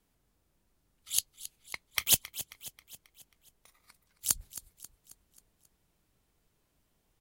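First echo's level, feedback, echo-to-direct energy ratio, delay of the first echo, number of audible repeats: -15.0 dB, 51%, -13.5 dB, 269 ms, 4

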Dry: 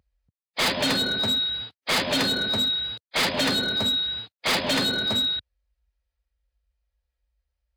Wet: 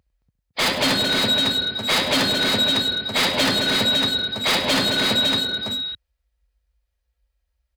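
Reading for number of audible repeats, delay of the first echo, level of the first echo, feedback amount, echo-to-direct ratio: 4, 65 ms, -17.0 dB, no regular repeats, -2.0 dB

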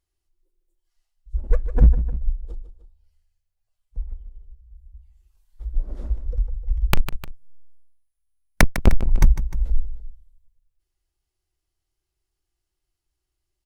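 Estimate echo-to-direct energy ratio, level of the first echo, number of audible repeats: -11.0 dB, -12.0 dB, 2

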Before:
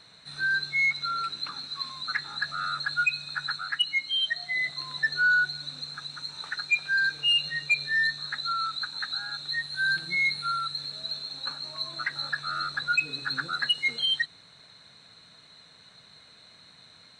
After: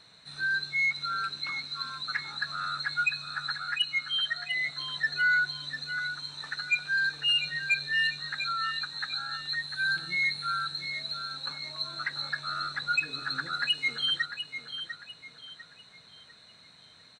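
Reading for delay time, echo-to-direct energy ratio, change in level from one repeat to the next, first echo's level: 698 ms, -9.0 dB, -9.0 dB, -9.5 dB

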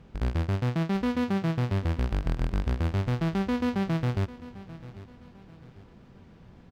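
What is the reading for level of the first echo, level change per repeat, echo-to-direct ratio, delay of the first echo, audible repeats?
-17.0 dB, -8.5 dB, -16.5 dB, 796 ms, 3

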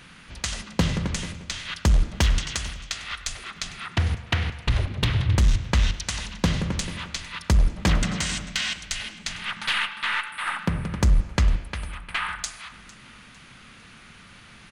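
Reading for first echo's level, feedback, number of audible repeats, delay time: -20.0 dB, 38%, 2, 453 ms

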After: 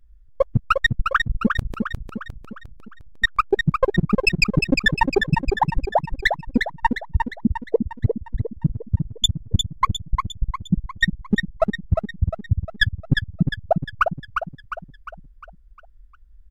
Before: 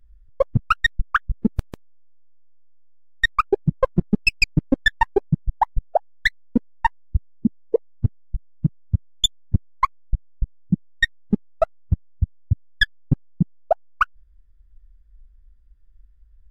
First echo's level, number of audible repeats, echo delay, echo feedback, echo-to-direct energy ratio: -5.5 dB, 5, 354 ms, 49%, -4.5 dB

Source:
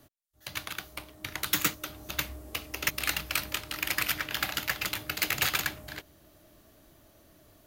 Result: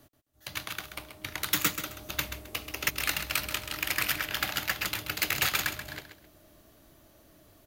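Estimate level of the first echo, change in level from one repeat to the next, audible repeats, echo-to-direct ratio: -9.5 dB, -12.0 dB, 2, -9.0 dB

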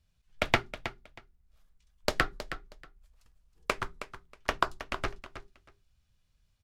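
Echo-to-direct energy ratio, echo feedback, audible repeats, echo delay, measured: -12.0 dB, 18%, 2, 318 ms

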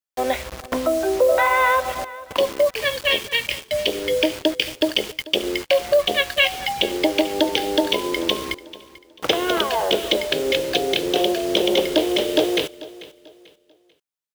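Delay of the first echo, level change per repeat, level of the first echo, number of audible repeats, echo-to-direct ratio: 441 ms, -10.0 dB, -18.5 dB, 2, -18.0 dB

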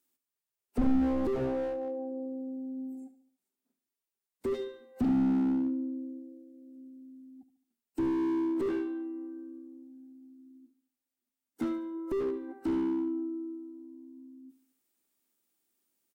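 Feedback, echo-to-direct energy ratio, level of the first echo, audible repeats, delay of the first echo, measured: 46%, -13.0 dB, -14.0 dB, 4, 72 ms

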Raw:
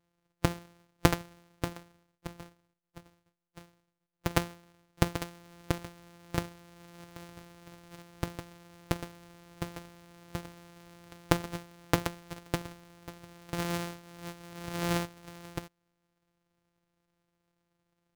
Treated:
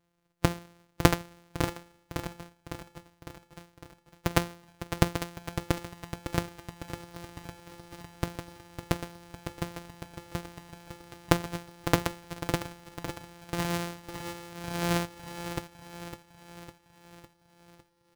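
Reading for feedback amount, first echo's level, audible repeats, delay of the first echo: 57%, -10.0 dB, 6, 555 ms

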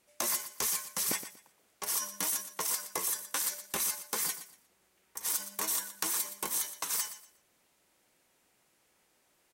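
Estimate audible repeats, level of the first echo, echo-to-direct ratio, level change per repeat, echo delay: 2, -12.5 dB, -12.0 dB, -12.0 dB, 119 ms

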